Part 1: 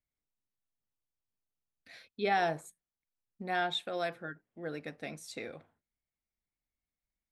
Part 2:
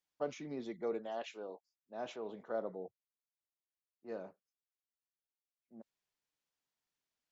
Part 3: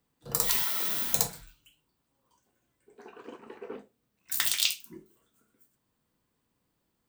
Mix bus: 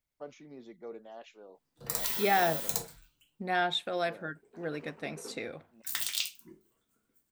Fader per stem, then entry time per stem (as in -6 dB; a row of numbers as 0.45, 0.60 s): +3.0, -6.5, -6.0 dB; 0.00, 0.00, 1.55 s